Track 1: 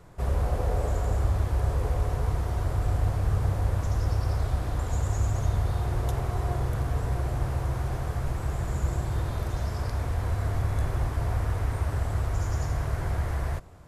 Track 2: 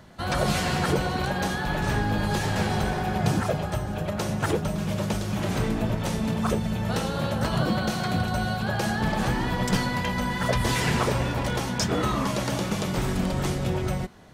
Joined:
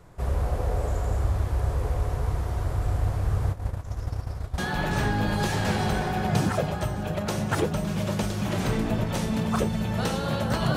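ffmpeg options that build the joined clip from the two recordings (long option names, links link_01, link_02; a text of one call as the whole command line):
ffmpeg -i cue0.wav -i cue1.wav -filter_complex "[0:a]asplit=3[link_01][link_02][link_03];[link_01]afade=type=out:start_time=3.51:duration=0.02[link_04];[link_02]agate=range=-33dB:threshold=-20dB:ratio=3:release=100:detection=peak,afade=type=in:start_time=3.51:duration=0.02,afade=type=out:start_time=4.58:duration=0.02[link_05];[link_03]afade=type=in:start_time=4.58:duration=0.02[link_06];[link_04][link_05][link_06]amix=inputs=3:normalize=0,apad=whole_dur=10.76,atrim=end=10.76,atrim=end=4.582[link_07];[1:a]atrim=start=1.488:end=7.67[link_08];[link_07][link_08]acrossfade=duration=0.004:curve1=hsin:curve2=hsin" out.wav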